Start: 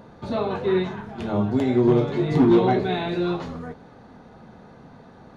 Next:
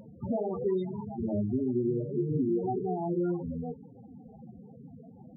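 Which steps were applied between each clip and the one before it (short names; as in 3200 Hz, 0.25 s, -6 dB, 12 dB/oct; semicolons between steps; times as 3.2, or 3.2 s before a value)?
compressor 12:1, threshold -25 dBFS, peak gain reduction 13 dB; loudest bins only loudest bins 8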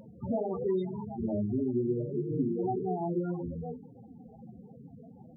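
notches 50/100/150/200/250/300/350/400/450 Hz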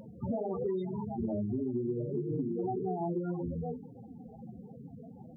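compressor, threshold -32 dBFS, peak gain reduction 8 dB; gain +2 dB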